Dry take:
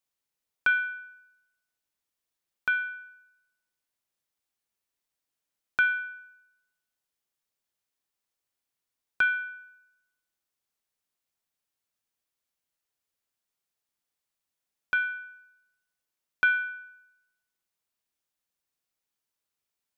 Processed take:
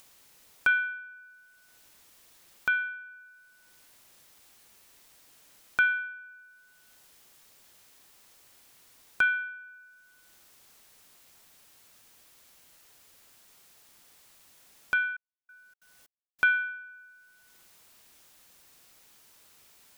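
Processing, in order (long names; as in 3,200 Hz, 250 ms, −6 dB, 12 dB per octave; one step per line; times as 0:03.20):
upward compression, threshold −36 dBFS
0:14.97–0:16.52: gate pattern "...xxx.xxx." 184 BPM −60 dB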